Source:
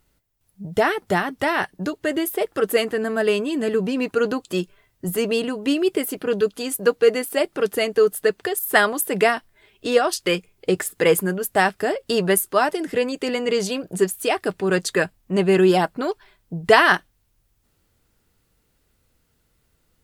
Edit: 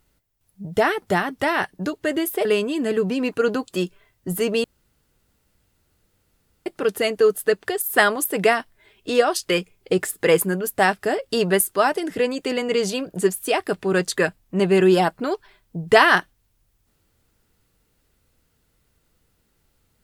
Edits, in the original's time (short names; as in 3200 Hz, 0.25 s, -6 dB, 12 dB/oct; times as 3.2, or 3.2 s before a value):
2.45–3.22 cut
5.41–7.43 room tone